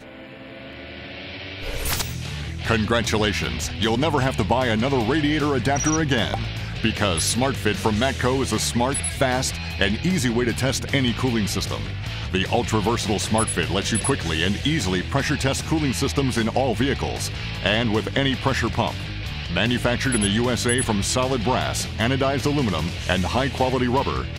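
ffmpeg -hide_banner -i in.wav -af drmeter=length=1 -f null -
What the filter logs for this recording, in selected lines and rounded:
Channel 1: DR: 11.9
Overall DR: 11.9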